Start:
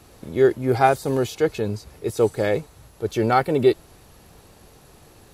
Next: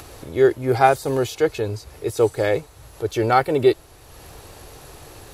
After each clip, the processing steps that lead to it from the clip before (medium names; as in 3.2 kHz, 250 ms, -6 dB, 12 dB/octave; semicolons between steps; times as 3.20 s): in parallel at -3 dB: upward compressor, threshold -26 dBFS; on the sum: peaking EQ 200 Hz -12.5 dB 0.56 oct; trim -2.5 dB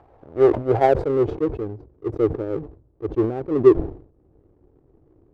low-pass sweep 810 Hz -> 330 Hz, 0.46–1.36 s; power-law waveshaper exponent 1.4; decay stretcher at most 120 dB/s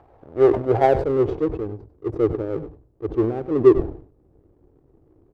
delay 98 ms -14 dB